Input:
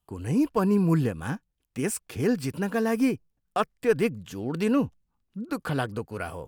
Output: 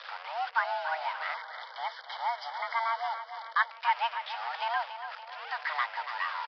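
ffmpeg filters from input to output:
-filter_complex "[0:a]aeval=exprs='val(0)+0.5*0.0316*sgn(val(0))':c=same,highpass=580,equalizer=f=3600:t=o:w=1.7:g=-5,acrusher=bits=6:mix=0:aa=0.000001,afreqshift=460,aecho=1:1:284|568|852|1136|1420|1704:0.316|0.171|0.0922|0.0498|0.0269|0.0145,aresample=11025,aresample=44100,asettb=1/sr,asplit=3[s0][s1][s2];[s0]atrim=end=1.344[s3];[s1]atrim=start=1.34:end=3.71,asetpts=PTS-STARTPTS,afade=t=in:d=0.004:c=qsin,afade=t=out:st=2.366:d=0.004:c=qsin,asuperstop=centerf=2600:order=8:qfactor=3.1[s4];[s2]atrim=start=3.706[s5];[s3][s4]acrossfade=d=0.004:c1=hsin:c2=qsin[s6];[s6][s5]acrossfade=d=0.004:c1=qsin:c2=hsin"

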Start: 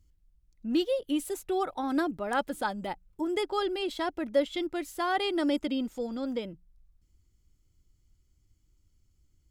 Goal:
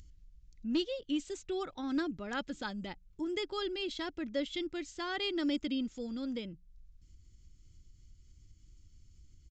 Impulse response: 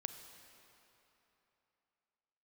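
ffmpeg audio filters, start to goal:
-af "equalizer=f=760:w=0.73:g=-13.5,acompressor=mode=upward:threshold=0.00501:ratio=2.5,aresample=16000,aeval=exprs='clip(val(0),-1,0.0473)':c=same,aresample=44100"

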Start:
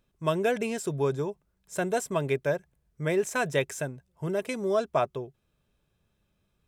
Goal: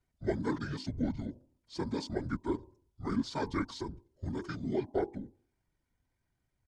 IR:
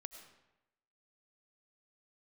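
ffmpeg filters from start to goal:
-af "bandreject=f=149.9:t=h:w=4,bandreject=f=299.8:t=h:w=4,bandreject=f=449.7:t=h:w=4,bandreject=f=599.6:t=h:w=4,bandreject=f=749.5:t=h:w=4,bandreject=f=899.4:t=h:w=4,bandreject=f=1049.3:t=h:w=4,bandreject=f=1199.2:t=h:w=4,bandreject=f=1349.1:t=h:w=4,bandreject=f=1499:t=h:w=4,bandreject=f=1648.9:t=h:w=4,afftfilt=real='hypot(re,im)*cos(2*PI*random(0))':imag='hypot(re,im)*sin(2*PI*random(1))':win_size=512:overlap=0.75,asetrate=26222,aresample=44100,atempo=1.68179"

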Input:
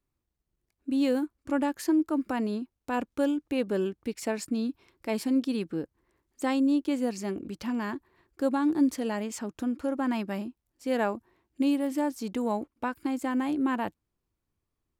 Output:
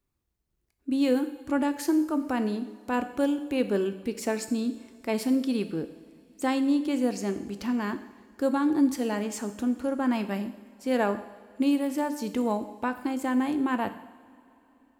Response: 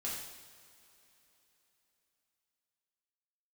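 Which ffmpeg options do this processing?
-filter_complex "[0:a]asplit=2[s0][s1];[1:a]atrim=start_sample=2205,highshelf=f=11000:g=7[s2];[s1][s2]afir=irnorm=-1:irlink=0,volume=0.376[s3];[s0][s3]amix=inputs=2:normalize=0"

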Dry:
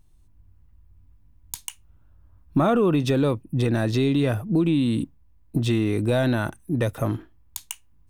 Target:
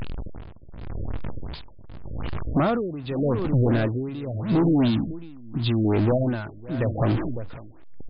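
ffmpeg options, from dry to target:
-filter_complex "[0:a]aeval=exprs='val(0)+0.5*0.0447*sgn(val(0))':c=same,asettb=1/sr,asplit=3[s0][s1][s2];[s0]atrim=end=4.854[s3];[s1]atrim=start=4.85:end=5.85,asetpts=PTS-STARTPTS,afade=t=in:d=0.004:c=qsin,afade=t=out:st=0.996:d=0.004:c=qsin,equalizer=f=500:t=o:w=1:g=-10,equalizer=f=2000:t=o:w=1:g=-4,equalizer=f=4000:t=o:w=1:g=5[s4];[s2]atrim=start=5.846[s5];[s3][s4]acrossfade=d=0.004:c1=hsin:c2=qsin[s6];[s6][s5]acrossfade=d=0.004:c1=qsin:c2=hsin,asplit=2[s7][s8];[s8]acompressor=threshold=0.0501:ratio=6,volume=0.794[s9];[s7][s9]amix=inputs=2:normalize=0,aecho=1:1:553:0.282,tremolo=f=0.84:d=0.85,volume=6.68,asoftclip=hard,volume=0.15,afftfilt=real='re*lt(b*sr/1024,620*pow(5200/620,0.5+0.5*sin(2*PI*2.7*pts/sr)))':imag='im*lt(b*sr/1024,620*pow(5200/620,0.5+0.5*sin(2*PI*2.7*pts/sr)))':win_size=1024:overlap=0.75"

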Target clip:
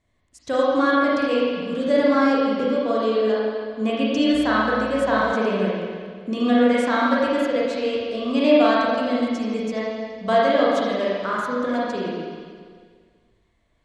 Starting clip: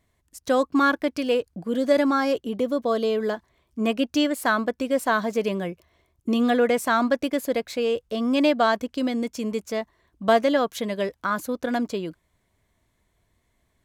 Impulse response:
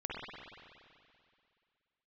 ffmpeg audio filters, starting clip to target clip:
-filter_complex "[0:a]lowpass=f=8800:w=0.5412,lowpass=f=8800:w=1.3066[s0];[1:a]atrim=start_sample=2205,asetrate=57330,aresample=44100[s1];[s0][s1]afir=irnorm=-1:irlink=0,asettb=1/sr,asplit=3[s2][s3][s4];[s2]atrim=end=4.344[s5];[s3]atrim=start=4.34:end=5.33,asetpts=PTS-STARTPTS,afade=t=in:d=0.004:c=qsin,afade=t=out:st=0.986:d=0.004:c=qsin,aeval=exprs='val(0)+0.00794*(sin(2*PI*60*n/s)+sin(2*PI*2*60*n/s)/2+sin(2*PI*3*60*n/s)/3+sin(2*PI*4*60*n/s)/4+sin(2*PI*5*60*n/s)/5)':c=same[s6];[s4]atrim=start=5.326[s7];[s5][s6]acrossfade=d=0.004:c1=hsin:c2=qsin[s8];[s8][s7]acrossfade=d=0.004:c1=qsin:c2=hsin,volume=1.26"

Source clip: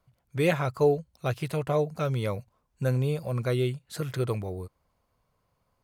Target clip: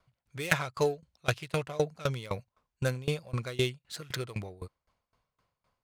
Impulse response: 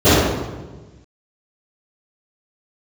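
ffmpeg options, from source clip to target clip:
-af "adynamicsmooth=sensitivity=5:basefreq=3000,crystalizer=i=9.5:c=0,aeval=exprs='val(0)*pow(10,-22*if(lt(mod(3.9*n/s,1),2*abs(3.9)/1000),1-mod(3.9*n/s,1)/(2*abs(3.9)/1000),(mod(3.9*n/s,1)-2*abs(3.9)/1000)/(1-2*abs(3.9)/1000))/20)':c=same"

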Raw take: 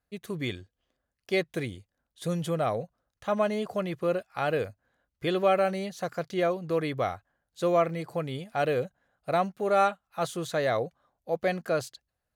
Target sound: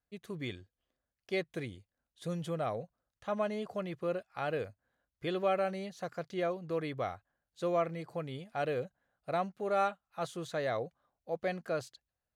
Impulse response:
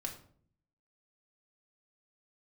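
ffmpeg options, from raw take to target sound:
-af "highshelf=f=11000:g=-10.5,volume=0.447"

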